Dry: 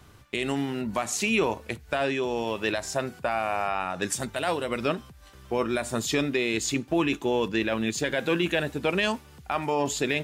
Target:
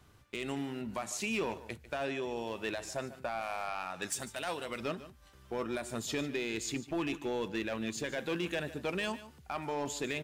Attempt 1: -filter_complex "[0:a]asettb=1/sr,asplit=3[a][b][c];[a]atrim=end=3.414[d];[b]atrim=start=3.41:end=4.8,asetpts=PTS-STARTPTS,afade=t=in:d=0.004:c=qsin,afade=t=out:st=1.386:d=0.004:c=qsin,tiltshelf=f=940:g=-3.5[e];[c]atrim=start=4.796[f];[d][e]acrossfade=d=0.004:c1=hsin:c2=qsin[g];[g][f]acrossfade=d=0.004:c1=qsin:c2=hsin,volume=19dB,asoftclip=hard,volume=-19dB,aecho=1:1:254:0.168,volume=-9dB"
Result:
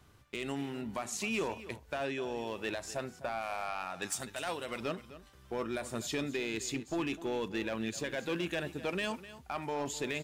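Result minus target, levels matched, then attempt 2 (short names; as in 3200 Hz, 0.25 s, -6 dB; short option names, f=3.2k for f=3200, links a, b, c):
echo 0.106 s late
-filter_complex "[0:a]asettb=1/sr,asplit=3[a][b][c];[a]atrim=end=3.414[d];[b]atrim=start=3.41:end=4.8,asetpts=PTS-STARTPTS,afade=t=in:d=0.004:c=qsin,afade=t=out:st=1.386:d=0.004:c=qsin,tiltshelf=f=940:g=-3.5[e];[c]atrim=start=4.796[f];[d][e]acrossfade=d=0.004:c1=hsin:c2=qsin[g];[g][f]acrossfade=d=0.004:c1=qsin:c2=hsin,volume=19dB,asoftclip=hard,volume=-19dB,aecho=1:1:148:0.168,volume=-9dB"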